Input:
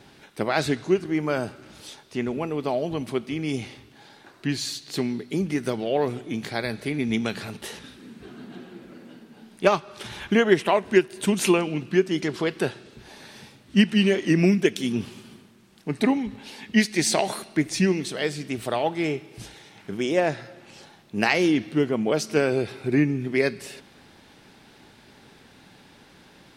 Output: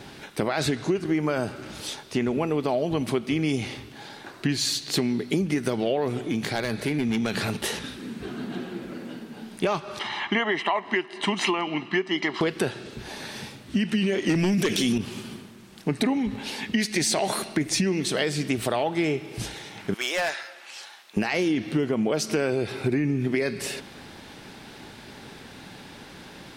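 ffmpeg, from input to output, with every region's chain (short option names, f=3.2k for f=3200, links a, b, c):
-filter_complex "[0:a]asettb=1/sr,asplit=3[a][b][c];[a]atrim=end=6.274[d];[b]atrim=start=6.27:end=7.34,asetpts=PTS-STARTPTS,afade=t=in:d=0.004:c=qsin,afade=t=out:st=1.066:d=0.004:c=qsin,acompressor=threshold=-36dB:ratio=1.5:attack=3.2:release=140:knee=1:detection=peak,asoftclip=type=hard:threshold=-26dB[e];[c]atrim=start=7.336[f];[d][e]acrossfade=d=0.004:c1=hsin:c2=qsin[g];[g][f]acrossfade=d=0.004:c1=qsin:c2=hsin,asettb=1/sr,asplit=3[h][i][j];[h]atrim=end=9.994[k];[i]atrim=start=9.99:end=12.41,asetpts=PTS-STARTPTS,afade=t=in:d=0.004:c=qsin,afade=t=out:st=2.416:d=0.004:c=qsin,highpass=420,lowpass=3.2k,aecho=1:1:1:0.69,atrim=end_sample=106722[l];[j]atrim=start=12.406[m];[k][l]acrossfade=d=0.004:c1=hsin:c2=qsin[n];[n][m]acrossfade=d=0.004:c1=qsin:c2=hsin,asettb=1/sr,asplit=3[o][p][q];[o]atrim=end=14.294[r];[p]atrim=start=14.29:end=14.98,asetpts=PTS-STARTPTS,afade=t=in:d=0.004:c=qsin,afade=t=out:st=0.686:d=0.004:c=qsin,acrossover=split=5800[s][t];[t]acompressor=threshold=-48dB:ratio=4:attack=1:release=60[u];[s][u]amix=inputs=2:normalize=0,highshelf=f=3.9k:g=10.5,aeval=exprs='0.631*sin(PI/2*2.51*val(0)/0.631)':c=same[v];[q]atrim=start=14.976[w];[r][v]acrossfade=d=0.004:c1=hsin:c2=qsin[x];[x][w]acrossfade=d=0.004:c1=qsin:c2=hsin,asettb=1/sr,asplit=3[y][z][aa];[y]atrim=end=19.944[ab];[z]atrim=start=19.94:end=21.17,asetpts=PTS-STARTPTS,afade=t=in:d=0.004:c=qsin,afade=t=out:st=1.226:d=0.004:c=qsin,highpass=1.1k,volume=28.5dB,asoftclip=hard,volume=-28.5dB[ac];[aa]atrim=start=21.166[ad];[ab][ac]acrossfade=d=0.004:c1=hsin:c2=qsin[ae];[ae][ad]acrossfade=d=0.004:c1=qsin:c2=hsin,alimiter=limit=-16dB:level=0:latency=1:release=17,acompressor=threshold=-29dB:ratio=6,volume=8dB"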